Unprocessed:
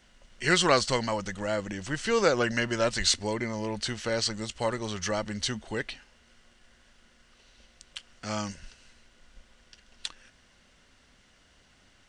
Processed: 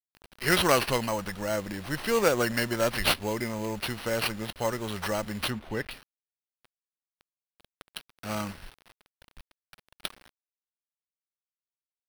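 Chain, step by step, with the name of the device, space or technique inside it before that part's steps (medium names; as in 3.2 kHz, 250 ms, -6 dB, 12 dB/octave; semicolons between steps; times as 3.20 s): early 8-bit sampler (sample-rate reducer 7.1 kHz, jitter 0%; bit crusher 8-bit); 5.50–5.91 s: tone controls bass +2 dB, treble -10 dB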